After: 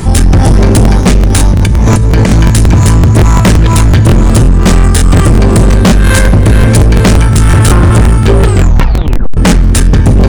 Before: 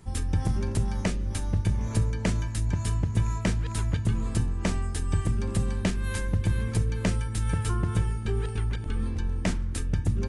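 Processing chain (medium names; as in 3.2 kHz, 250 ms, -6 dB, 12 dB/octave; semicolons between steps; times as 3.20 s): 8.45 s: tape stop 0.92 s; peaking EQ 270 Hz +2 dB 1.9 oct; de-hum 209.9 Hz, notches 31; 1.47–2.30 s: compressor with a negative ratio -30 dBFS, ratio -1; overload inside the chain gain 29 dB; loudness maximiser +35 dB; crackling interface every 0.18 s, samples 1024, repeat, from 0.83 s; trim -1 dB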